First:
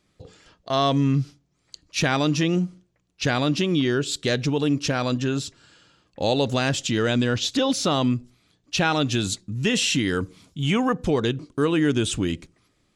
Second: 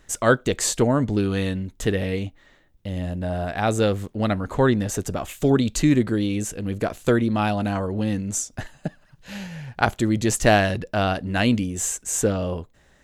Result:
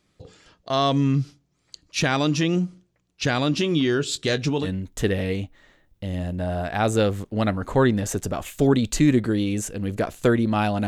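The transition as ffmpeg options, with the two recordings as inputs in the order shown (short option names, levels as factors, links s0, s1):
-filter_complex "[0:a]asettb=1/sr,asplit=3[s0][s1][s2];[s0]atrim=end=3.524[s3];[s1]atrim=start=3.52:end=4.69,asetpts=PTS-STARTPTS,afade=t=in:d=0.004:c=qsin,afade=t=out:st=1.166:d=0.004:c=qsin,asplit=2[s4][s5];[s5]adelay=19,volume=0.282[s6];[s4][s6]amix=inputs=2:normalize=0,atrim=end_sample=51597[s7];[s2]atrim=start=4.686[s8];[s3][s7]acrossfade=d=0.004:c1=hsin:c2=qsin[s9];[s9][s8]acrossfade=d=0.004:c1=qsin:c2=hsin,apad=whole_dur=10.87,atrim=end=10.87,atrim=end=4.69,asetpts=PTS-STARTPTS[s10];[1:a]atrim=start=1.44:end=7.7,asetpts=PTS-STARTPTS[s11];[s10][s11]acrossfade=d=0.08:c1=tri:c2=tri"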